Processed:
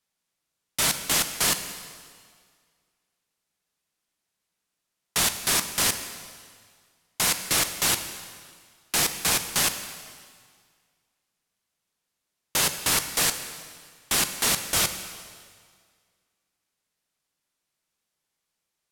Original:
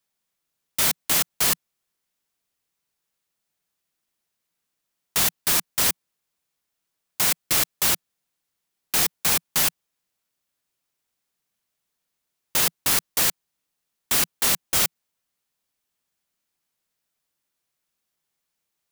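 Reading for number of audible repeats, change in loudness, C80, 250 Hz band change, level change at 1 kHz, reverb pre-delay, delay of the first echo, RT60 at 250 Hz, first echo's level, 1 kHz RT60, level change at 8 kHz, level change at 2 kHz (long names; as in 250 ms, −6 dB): no echo audible, −2.5 dB, 10.5 dB, +0.5 dB, +0.5 dB, 5 ms, no echo audible, 1.8 s, no echo audible, 1.9 s, 0.0 dB, +0.5 dB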